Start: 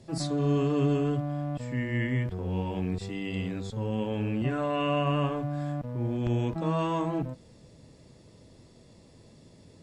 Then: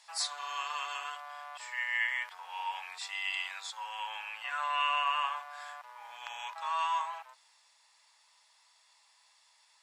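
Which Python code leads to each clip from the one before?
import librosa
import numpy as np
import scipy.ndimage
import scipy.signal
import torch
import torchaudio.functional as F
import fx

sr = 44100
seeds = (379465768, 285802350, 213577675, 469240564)

y = scipy.signal.sosfilt(scipy.signal.ellip(4, 1.0, 60, 890.0, 'highpass', fs=sr, output='sos'), x)
y = fx.rider(y, sr, range_db=4, speed_s=2.0)
y = y * 10.0 ** (4.0 / 20.0)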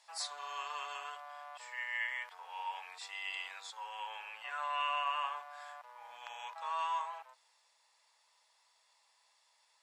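y = fx.peak_eq(x, sr, hz=400.0, db=11.5, octaves=1.4)
y = y * 10.0 ** (-6.5 / 20.0)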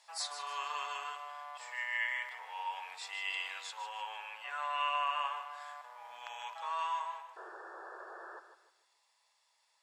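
y = fx.rider(x, sr, range_db=5, speed_s=2.0)
y = fx.spec_paint(y, sr, seeds[0], shape='noise', start_s=7.36, length_s=1.04, low_hz=330.0, high_hz=1800.0, level_db=-49.0)
y = fx.echo_feedback(y, sr, ms=152, feedback_pct=34, wet_db=-10.5)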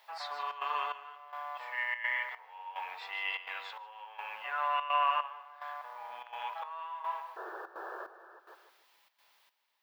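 y = fx.dmg_noise_colour(x, sr, seeds[1], colour='violet', level_db=-51.0)
y = fx.step_gate(y, sr, bpm=147, pattern='xxxxx.xxx....x', floor_db=-12.0, edge_ms=4.5)
y = fx.air_absorb(y, sr, metres=360.0)
y = y * 10.0 ** (7.5 / 20.0)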